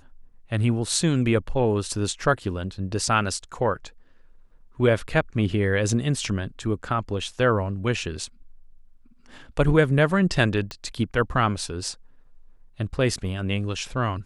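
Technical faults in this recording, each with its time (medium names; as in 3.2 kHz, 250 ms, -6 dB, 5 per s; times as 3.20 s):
10.71 s: pop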